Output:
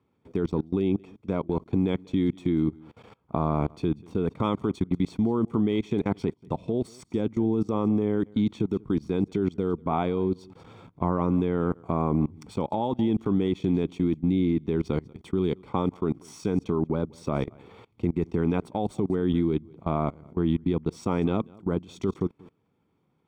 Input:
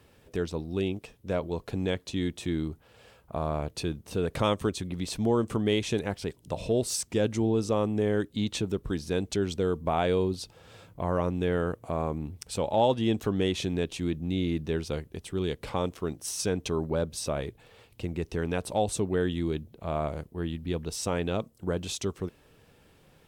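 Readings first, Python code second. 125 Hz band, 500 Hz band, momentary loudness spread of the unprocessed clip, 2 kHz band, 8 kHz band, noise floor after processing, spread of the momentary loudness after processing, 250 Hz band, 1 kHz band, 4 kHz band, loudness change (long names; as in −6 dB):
+3.5 dB, 0.0 dB, 9 LU, −5.0 dB, below −15 dB, −71 dBFS, 6 LU, +5.5 dB, +1.0 dB, −8.5 dB, +2.5 dB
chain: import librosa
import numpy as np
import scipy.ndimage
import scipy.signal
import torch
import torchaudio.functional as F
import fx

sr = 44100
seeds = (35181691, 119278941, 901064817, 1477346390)

p1 = scipy.ndimage.median_filter(x, 3, mode='constant')
p2 = fx.rider(p1, sr, range_db=4, speed_s=0.5)
p3 = p1 + F.gain(torch.from_numpy(p2), 1.0).numpy()
p4 = scipy.signal.sosfilt(scipy.signal.butter(2, 290.0, 'highpass', fs=sr, output='sos'), p3)
p5 = fx.tilt_eq(p4, sr, slope=-4.5)
p6 = p5 + 10.0 ** (-21.5 / 20.0) * np.pad(p5, (int(188 * sr / 1000.0), 0))[:len(p5)]
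p7 = fx.level_steps(p6, sr, step_db=24)
p8 = fx.notch(p7, sr, hz=4800.0, q=30.0)
y = p8 + 0.57 * np.pad(p8, (int(0.9 * sr / 1000.0), 0))[:len(p8)]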